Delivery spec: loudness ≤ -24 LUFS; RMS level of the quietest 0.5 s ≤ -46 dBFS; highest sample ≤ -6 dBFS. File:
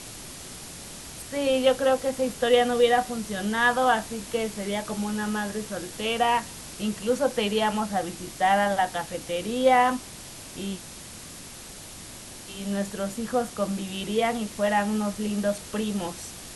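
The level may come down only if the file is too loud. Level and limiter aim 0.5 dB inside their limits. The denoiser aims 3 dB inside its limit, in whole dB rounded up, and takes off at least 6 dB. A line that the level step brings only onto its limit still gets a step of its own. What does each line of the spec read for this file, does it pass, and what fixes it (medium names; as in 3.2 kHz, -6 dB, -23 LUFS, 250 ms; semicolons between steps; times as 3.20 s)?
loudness -26.0 LUFS: pass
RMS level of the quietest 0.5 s -42 dBFS: fail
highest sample -9.0 dBFS: pass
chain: noise reduction 7 dB, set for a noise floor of -42 dBFS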